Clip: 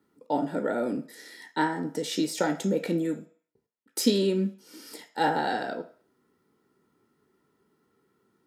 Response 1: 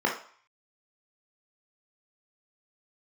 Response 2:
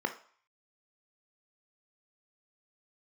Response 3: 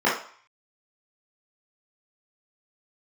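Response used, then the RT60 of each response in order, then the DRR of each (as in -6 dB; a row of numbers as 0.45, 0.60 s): 2; 0.50, 0.50, 0.50 s; -1.0, 6.5, -8.5 dB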